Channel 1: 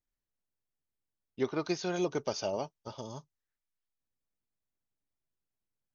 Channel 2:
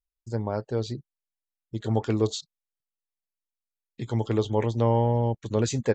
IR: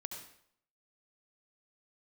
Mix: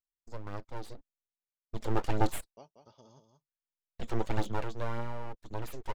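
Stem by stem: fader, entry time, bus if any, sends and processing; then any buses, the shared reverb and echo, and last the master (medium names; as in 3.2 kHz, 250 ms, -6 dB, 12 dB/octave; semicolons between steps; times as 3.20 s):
-16.0 dB, 0.00 s, muted 1.29–2.57 s, no send, echo send -7.5 dB, none
1.17 s -11.5 dB -> 1.85 s -3 dB -> 4.28 s -3 dB -> 5.01 s -13 dB, 0.00 s, no send, no echo send, gate with hold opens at -36 dBFS; full-wave rectifier; phaser 1.8 Hz, delay 2.8 ms, feedback 39%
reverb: none
echo: delay 185 ms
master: none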